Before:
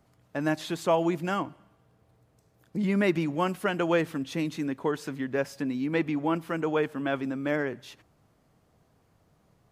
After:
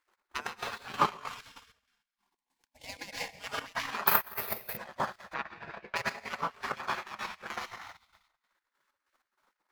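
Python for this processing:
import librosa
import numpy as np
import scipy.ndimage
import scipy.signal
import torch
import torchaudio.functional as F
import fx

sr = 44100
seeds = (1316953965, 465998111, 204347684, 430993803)

y = scipy.ndimage.median_filter(x, 15, mode='constant')
y = fx.fixed_phaser(y, sr, hz=530.0, stages=4, at=(1.13, 3.39), fade=0.02)
y = fx.echo_feedback(y, sr, ms=202, feedback_pct=27, wet_db=-15)
y = fx.rev_plate(y, sr, seeds[0], rt60_s=1.0, hf_ratio=0.8, predelay_ms=95, drr_db=-3.5)
y = fx.spec_gate(y, sr, threshold_db=-20, keep='weak')
y = fx.resample_bad(y, sr, factor=3, down='filtered', up='zero_stuff', at=(4.07, 4.77))
y = fx.lowpass(y, sr, hz=2800.0, slope=12, at=(5.33, 5.95), fade=0.02)
y = fx.transient(y, sr, attack_db=11, sustain_db=-11)
y = fx.chopper(y, sr, hz=3.2, depth_pct=65, duty_pct=50)
y = fx.dynamic_eq(y, sr, hz=1100.0, q=1.6, threshold_db=-47.0, ratio=4.0, max_db=5)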